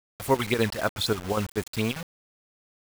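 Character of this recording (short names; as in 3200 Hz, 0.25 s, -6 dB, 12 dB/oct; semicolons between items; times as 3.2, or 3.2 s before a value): chopped level 5.1 Hz, depth 60%, duty 75%; phasing stages 12, 3.9 Hz, lowest notch 330–3800 Hz; a quantiser's noise floor 6-bit, dither none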